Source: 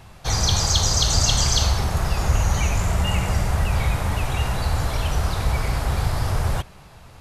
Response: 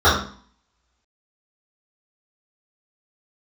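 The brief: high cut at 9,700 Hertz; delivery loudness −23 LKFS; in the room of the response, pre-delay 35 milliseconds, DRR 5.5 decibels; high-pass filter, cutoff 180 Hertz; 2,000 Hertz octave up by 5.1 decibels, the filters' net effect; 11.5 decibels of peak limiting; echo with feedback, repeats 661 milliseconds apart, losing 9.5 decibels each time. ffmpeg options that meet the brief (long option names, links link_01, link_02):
-filter_complex "[0:a]highpass=180,lowpass=9700,equalizer=frequency=2000:width_type=o:gain=6.5,alimiter=limit=-16.5dB:level=0:latency=1,aecho=1:1:661|1322|1983|2644:0.335|0.111|0.0365|0.012,asplit=2[link_01][link_02];[1:a]atrim=start_sample=2205,adelay=35[link_03];[link_02][link_03]afir=irnorm=-1:irlink=0,volume=-31.5dB[link_04];[link_01][link_04]amix=inputs=2:normalize=0,volume=1.5dB"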